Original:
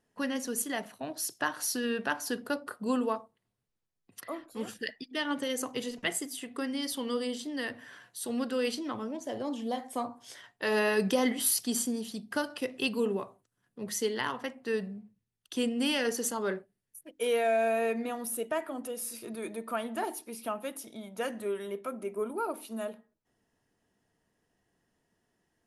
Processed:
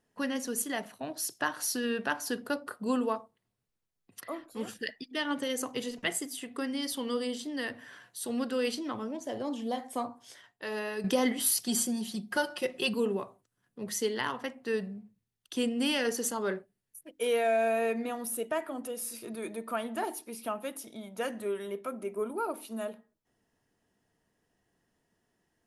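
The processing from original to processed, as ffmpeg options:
-filter_complex "[0:a]asettb=1/sr,asplit=3[a][b][c];[a]atrim=end=11.664[d];[b]atrim=start=11.66:end=12.94,asetpts=PTS-STARTPTS,afade=t=in:d=0.004:c=qsin,afade=t=out:st=1.276:d=0.004:c=qsin,aecho=1:1:5.5:0.81,atrim=end_sample=56448[e];[c]atrim=start=12.936[f];[d][e]acrossfade=d=0.004:c1=hsin:c2=qsin[g];[g][f]acrossfade=d=0.004:c1=qsin:c2=hsin,asplit=2[h][i];[h]atrim=end=11.04,asetpts=PTS-STARTPTS,afade=t=out:st=10.01:d=1.03:c=qua:silence=0.354813[j];[i]atrim=start=11.04,asetpts=PTS-STARTPTS,afade=t=in:d=0.004:c=hsin:silence=0.354813[k];[j][k]concat=n=2:v=0:a=1"

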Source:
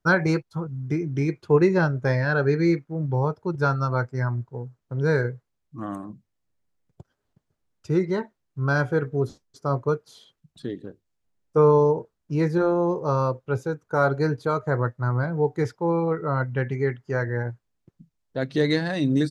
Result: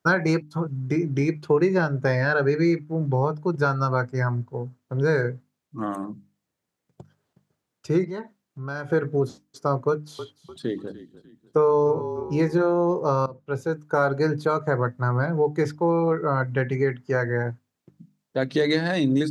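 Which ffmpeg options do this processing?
-filter_complex "[0:a]asettb=1/sr,asplit=3[a][b][c];[a]atrim=end=8.044[d];[b]atrim=start=8.04:end=8.9,asetpts=PTS-STARTPTS,afade=t=in:d=0.004:c=qsin,afade=t=out:st=0.856:d=0.004:c=qsin,acompressor=threshold=-38dB:ratio=2.5:attack=3.2:release=140:knee=1:detection=peak[e];[c]atrim=start=8.896[f];[d][e]acrossfade=d=0.004:c1=hsin:c2=qsin[g];[g][f]acrossfade=d=0.004:c1=qsin:c2=hsin,asettb=1/sr,asplit=3[h][i][j];[h]atrim=end=9.894[k];[i]atrim=start=9.89:end=12.57,asetpts=PTS-STARTPTS,afade=t=in:d=0.004:c=qsin,afade=t=out:st=2.676:d=0.004:c=qsin,asplit=4[l][m][n][o];[m]adelay=297,afreqshift=-36,volume=-16dB[p];[n]adelay=594,afreqshift=-72,volume=-24.2dB[q];[o]adelay=891,afreqshift=-108,volume=-32.4dB[r];[l][p][q][r]amix=inputs=4:normalize=0,atrim=end_sample=118188[s];[j]atrim=start=12.566[t];[k][s]acrossfade=d=0.004:c1=hsin:c2=qsin[u];[u][t]acrossfade=d=0.004:c1=qsin:c2=hsin,asplit=2[v][w];[v]atrim=end=13.26,asetpts=PTS-STARTPTS,afade=t=out:st=13.256:d=0.004:c=hsin:silence=0.0841395[x];[w]atrim=start=13.26,asetpts=PTS-STARTPTS,afade=t=in:d=0.58:silence=0.0841395[y];[x][y]concat=n=2:v=0:a=1,highpass=130,bandreject=f=50:t=h:w=6,bandreject=f=100:t=h:w=6,bandreject=f=150:t=h:w=6,bandreject=f=200:t=h:w=6,bandreject=f=250:t=h:w=6,bandreject=f=300:t=h:w=6,acompressor=threshold=-24dB:ratio=2.5,volume=5dB"

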